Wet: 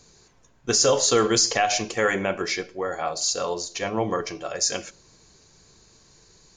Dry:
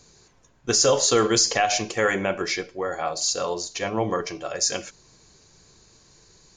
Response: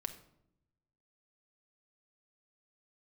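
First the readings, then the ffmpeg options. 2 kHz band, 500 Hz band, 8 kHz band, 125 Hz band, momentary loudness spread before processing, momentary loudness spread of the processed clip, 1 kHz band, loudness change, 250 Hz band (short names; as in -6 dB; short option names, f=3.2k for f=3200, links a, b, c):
-0.5 dB, -0.5 dB, -0.5 dB, -1.0 dB, 10 LU, 10 LU, -0.5 dB, -0.5 dB, -0.5 dB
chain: -filter_complex "[0:a]asplit=2[a][b];[1:a]atrim=start_sample=2205,asetrate=48510,aresample=44100[c];[b][c]afir=irnorm=-1:irlink=0,volume=-10.5dB[d];[a][d]amix=inputs=2:normalize=0,volume=-2dB"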